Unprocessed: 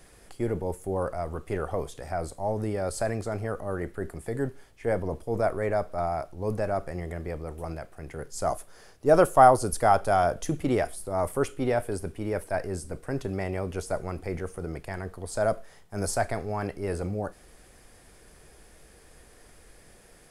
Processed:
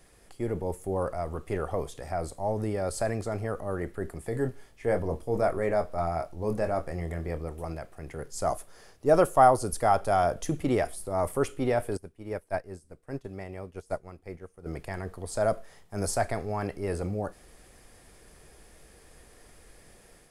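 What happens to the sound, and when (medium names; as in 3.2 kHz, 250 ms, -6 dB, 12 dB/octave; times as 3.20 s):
4.30–7.49 s: doubling 24 ms -8 dB
11.97–14.66 s: upward expansion 2.5:1, over -38 dBFS
whole clip: level rider gain up to 4 dB; band-stop 1.5 kHz, Q 21; trim -4.5 dB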